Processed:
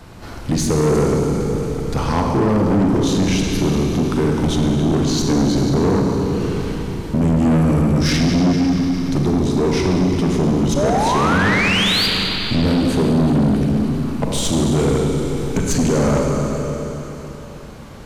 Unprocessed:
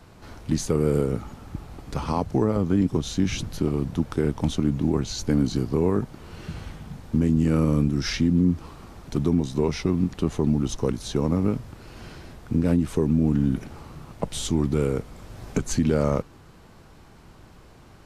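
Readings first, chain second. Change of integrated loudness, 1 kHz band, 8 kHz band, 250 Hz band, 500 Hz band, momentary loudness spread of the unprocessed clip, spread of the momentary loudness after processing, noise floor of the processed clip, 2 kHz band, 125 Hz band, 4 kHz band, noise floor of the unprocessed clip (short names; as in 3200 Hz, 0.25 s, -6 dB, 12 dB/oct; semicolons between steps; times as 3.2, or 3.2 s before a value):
+7.0 dB, +13.0 dB, +9.5 dB, +7.5 dB, +8.0 dB, 18 LU, 8 LU, -33 dBFS, +16.0 dB, +7.0 dB, +14.5 dB, -50 dBFS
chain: painted sound rise, 10.76–12.07, 550–4900 Hz -26 dBFS; Schroeder reverb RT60 3.4 s, combs from 33 ms, DRR 0.5 dB; soft clip -20.5 dBFS, distortion -9 dB; gain +9 dB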